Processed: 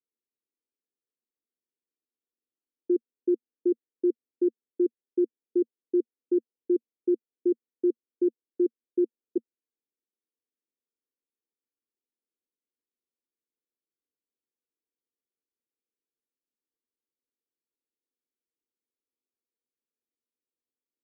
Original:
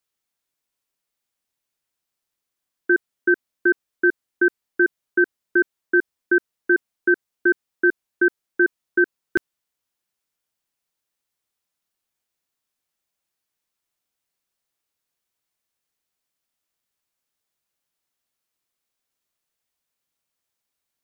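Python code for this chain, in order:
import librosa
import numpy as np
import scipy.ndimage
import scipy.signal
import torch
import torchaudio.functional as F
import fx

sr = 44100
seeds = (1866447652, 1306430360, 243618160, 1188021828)

y = scipy.signal.sosfilt(scipy.signal.ellip(3, 1.0, 80, [230.0, 490.0], 'bandpass', fs=sr, output='sos'), x)
y = y * 10.0 ** (-3.0 / 20.0)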